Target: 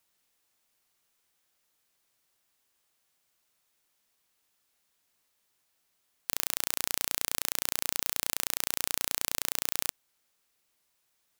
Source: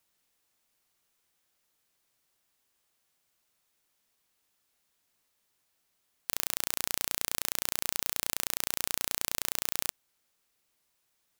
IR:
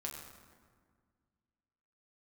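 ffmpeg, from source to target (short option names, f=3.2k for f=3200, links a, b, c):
-af "lowshelf=f=410:g=-2.5,volume=1dB"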